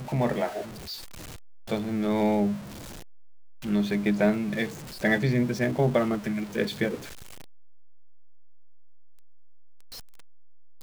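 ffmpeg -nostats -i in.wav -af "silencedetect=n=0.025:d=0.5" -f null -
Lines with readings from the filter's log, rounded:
silence_start: 0.94
silence_end: 1.71 | silence_duration: 0.77
silence_start: 2.57
silence_end: 3.64 | silence_duration: 1.07
silence_start: 6.95
silence_end: 10.83 | silence_duration: 3.87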